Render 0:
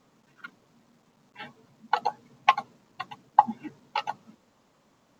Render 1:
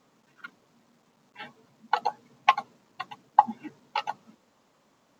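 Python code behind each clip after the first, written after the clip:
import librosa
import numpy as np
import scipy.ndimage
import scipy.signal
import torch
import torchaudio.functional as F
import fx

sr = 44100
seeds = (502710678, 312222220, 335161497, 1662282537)

y = fx.low_shelf(x, sr, hz=140.0, db=-8.0)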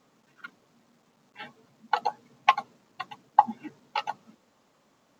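y = fx.notch(x, sr, hz=970.0, q=27.0)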